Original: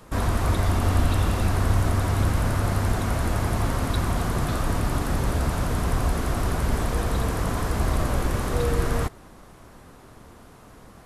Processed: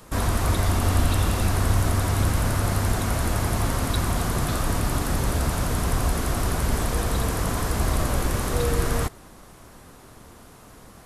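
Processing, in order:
high-shelf EQ 3,900 Hz +7 dB

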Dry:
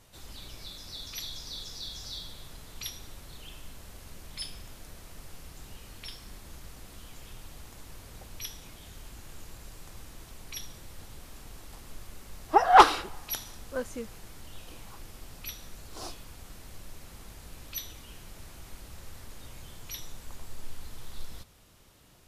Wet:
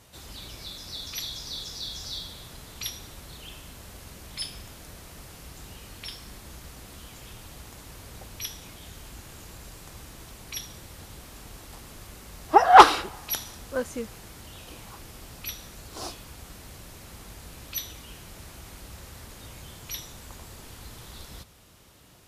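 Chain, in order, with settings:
high-pass filter 43 Hz
level +4.5 dB

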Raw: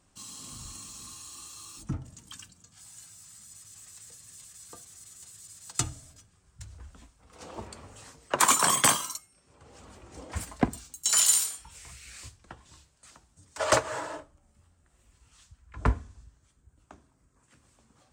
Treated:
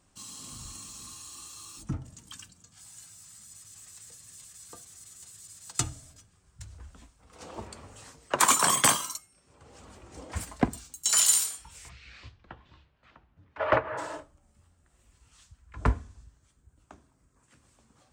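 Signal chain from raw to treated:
0:11.88–0:13.97: low-pass filter 4,500 Hz → 2,300 Hz 24 dB per octave

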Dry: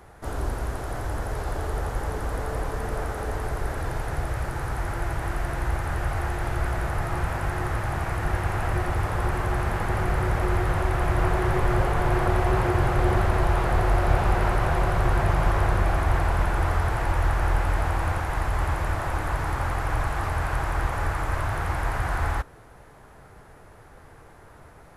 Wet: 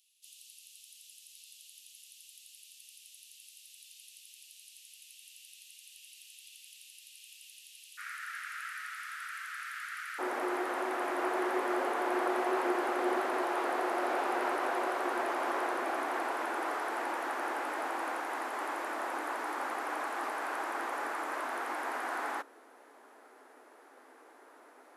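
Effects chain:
Chebyshev high-pass filter 2,700 Hz, order 6, from 0:07.97 1,300 Hz, from 0:10.18 250 Hz
level −5 dB

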